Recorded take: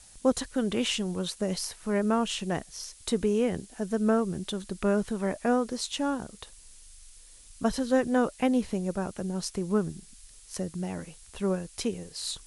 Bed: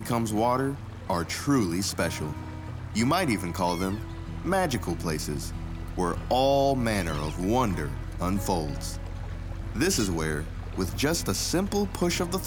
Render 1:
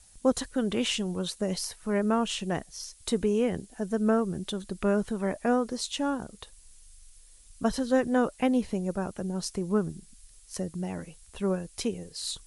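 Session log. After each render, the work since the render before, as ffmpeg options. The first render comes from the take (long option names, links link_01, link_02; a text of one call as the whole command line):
ffmpeg -i in.wav -af "afftdn=noise_reduction=6:noise_floor=-53" out.wav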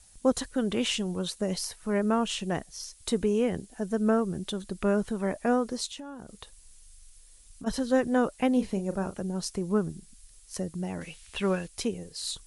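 ffmpeg -i in.wav -filter_complex "[0:a]asplit=3[link_01][link_02][link_03];[link_01]afade=type=out:start_time=5.86:duration=0.02[link_04];[link_02]acompressor=threshold=-37dB:ratio=12:attack=3.2:release=140:knee=1:detection=peak,afade=type=in:start_time=5.86:duration=0.02,afade=type=out:start_time=7.66:duration=0.02[link_05];[link_03]afade=type=in:start_time=7.66:duration=0.02[link_06];[link_04][link_05][link_06]amix=inputs=3:normalize=0,asettb=1/sr,asplit=3[link_07][link_08][link_09];[link_07]atrim=end=8.534[link_10];[link_08]atrim=start=8.53:end=9.18,asetpts=PTS-STARTPTS,afade=type=in:duration=0.004:curve=qsin,afade=type=out:start_time=0.646:duration=0.004:curve=qsin,asplit=2[link_11][link_12];[link_12]adelay=36,volume=-11dB[link_13];[link_11][link_13]amix=inputs=2:normalize=0,atrim=end_sample=28665[link_14];[link_09]atrim=start=9.176[link_15];[link_10][link_14]acrossfade=duration=0.004:curve1=hsin:curve2=qsin[link_16];[link_16][link_15]acrossfade=duration=0.004:curve1=qsin:curve2=hsin,asettb=1/sr,asplit=3[link_17][link_18][link_19];[link_17]atrim=end=11.014[link_20];[link_18]atrim=start=11.01:end=11.68,asetpts=PTS-STARTPTS,afade=type=in:duration=0.004:curve=qsin,afade=type=out:start_time=0.666:duration=0.004:curve=qsin,equalizer=frequency=2600:width=0.68:gain=13[link_21];[link_19]atrim=start=11.676[link_22];[link_20][link_21]acrossfade=duration=0.004:curve1=hsin:curve2=qsin[link_23];[link_23][link_22]acrossfade=duration=0.004:curve1=qsin:curve2=hsin" out.wav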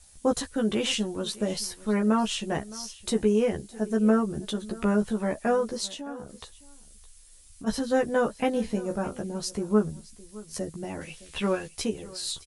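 ffmpeg -i in.wav -filter_complex "[0:a]asplit=2[link_01][link_02];[link_02]adelay=14,volume=-3dB[link_03];[link_01][link_03]amix=inputs=2:normalize=0,aecho=1:1:614:0.1" out.wav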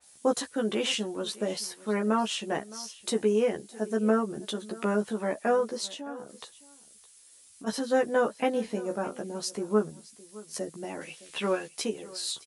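ffmpeg -i in.wav -af "highpass=260,adynamicequalizer=threshold=0.00501:dfrequency=3300:dqfactor=0.7:tfrequency=3300:tqfactor=0.7:attack=5:release=100:ratio=0.375:range=1.5:mode=cutabove:tftype=highshelf" out.wav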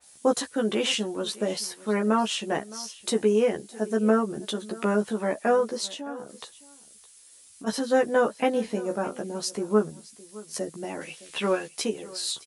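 ffmpeg -i in.wav -af "volume=3dB" out.wav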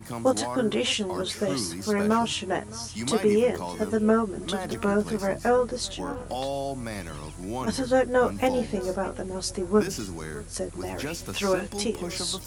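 ffmpeg -i in.wav -i bed.wav -filter_complex "[1:a]volume=-8dB[link_01];[0:a][link_01]amix=inputs=2:normalize=0" out.wav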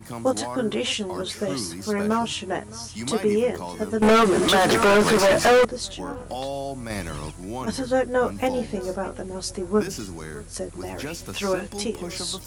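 ffmpeg -i in.wav -filter_complex "[0:a]asettb=1/sr,asplit=3[link_01][link_02][link_03];[link_01]atrim=end=4.024[link_04];[link_02]atrim=start=4.02:end=5.65,asetpts=PTS-STARTPTS,afade=type=in:duration=0.004:curve=qsin,afade=type=out:start_time=1.626:duration=0.004:curve=qsin,asplit=2[link_05][link_06];[link_06]highpass=frequency=720:poles=1,volume=32dB,asoftclip=type=tanh:threshold=-9dB[link_07];[link_05][link_07]amix=inputs=2:normalize=0,lowpass=frequency=3900:poles=1,volume=-6dB[link_08];[link_03]atrim=start=5.646[link_09];[link_04][link_08]acrossfade=duration=0.004:curve1=hsin:curve2=qsin[link_10];[link_10][link_09]acrossfade=duration=0.004:curve1=qsin:curve2=hsin,asplit=3[link_11][link_12][link_13];[link_11]atrim=end=6.902[link_14];[link_12]atrim=start=6.898:end=7.312,asetpts=PTS-STARTPTS,volume=5dB[link_15];[link_13]atrim=start=7.308[link_16];[link_14][link_15]acrossfade=duration=0.004:curve1=hsin:curve2=hsin[link_17];[link_17][link_16]acrossfade=duration=0.004:curve1=hsin:curve2=hsin" out.wav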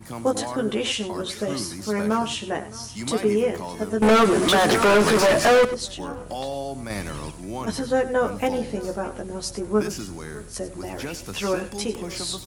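ffmpeg -i in.wav -af "aecho=1:1:97:0.211" out.wav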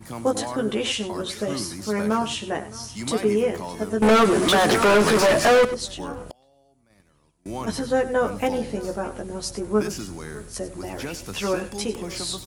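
ffmpeg -i in.wav -filter_complex "[0:a]asettb=1/sr,asplit=3[link_01][link_02][link_03];[link_01]atrim=end=6.314[link_04];[link_02]atrim=start=6.31:end=7.46,asetpts=PTS-STARTPTS,afade=type=in:duration=0.004:curve=qsin,afade=type=out:start_time=1.146:duration=0.004:curve=qsin,agate=range=-30dB:threshold=-25dB:ratio=16:release=100:detection=peak[link_05];[link_03]atrim=start=7.456[link_06];[link_04][link_05]acrossfade=duration=0.004:curve1=hsin:curve2=qsin[link_07];[link_07][link_06]acrossfade=duration=0.004:curve1=qsin:curve2=hsin" out.wav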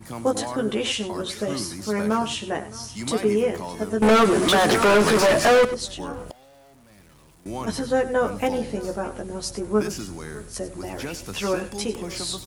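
ffmpeg -i in.wav -filter_complex "[0:a]asettb=1/sr,asplit=3[link_01][link_02][link_03];[link_01]atrim=end=6.144[link_04];[link_02]atrim=start=6.14:end=7.49,asetpts=PTS-STARTPTS,afade=type=in:duration=0.004:curve=qsin,afade=type=out:start_time=1.346:duration=0.004:curve=qsin,aeval=exprs='val(0)+0.5*0.00335*sgn(val(0))':channel_layout=same[link_05];[link_03]atrim=start=7.486[link_06];[link_04][link_05]acrossfade=duration=0.004:curve1=hsin:curve2=qsin[link_07];[link_07][link_06]acrossfade=duration=0.004:curve1=qsin:curve2=hsin" out.wav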